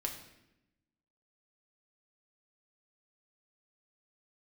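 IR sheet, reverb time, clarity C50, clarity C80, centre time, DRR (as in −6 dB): 0.90 s, 8.0 dB, 10.5 dB, 22 ms, 1.0 dB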